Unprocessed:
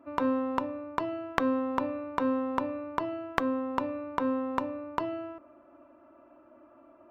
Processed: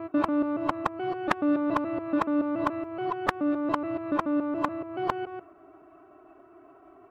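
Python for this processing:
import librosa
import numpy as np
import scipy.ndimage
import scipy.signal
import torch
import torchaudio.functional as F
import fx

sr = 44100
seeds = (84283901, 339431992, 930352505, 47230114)

y = fx.local_reverse(x, sr, ms=142.0)
y = fx.pitch_keep_formants(y, sr, semitones=2.0)
y = F.gain(torch.from_numpy(y), 3.5).numpy()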